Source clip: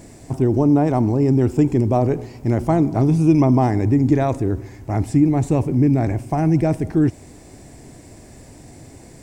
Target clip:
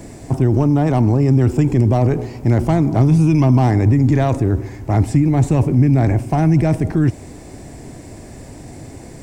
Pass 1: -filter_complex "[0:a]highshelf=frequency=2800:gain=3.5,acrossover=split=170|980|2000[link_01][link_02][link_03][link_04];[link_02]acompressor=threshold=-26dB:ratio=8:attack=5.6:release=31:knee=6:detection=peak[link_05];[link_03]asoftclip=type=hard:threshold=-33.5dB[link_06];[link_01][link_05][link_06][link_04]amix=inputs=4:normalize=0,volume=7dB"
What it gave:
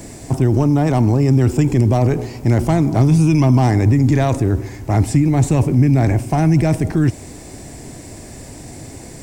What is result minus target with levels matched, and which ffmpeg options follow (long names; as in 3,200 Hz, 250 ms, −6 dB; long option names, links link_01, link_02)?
4,000 Hz band +4.5 dB
-filter_complex "[0:a]highshelf=frequency=2800:gain=-4,acrossover=split=170|980|2000[link_01][link_02][link_03][link_04];[link_02]acompressor=threshold=-26dB:ratio=8:attack=5.6:release=31:knee=6:detection=peak[link_05];[link_03]asoftclip=type=hard:threshold=-33.5dB[link_06];[link_01][link_05][link_06][link_04]amix=inputs=4:normalize=0,volume=7dB"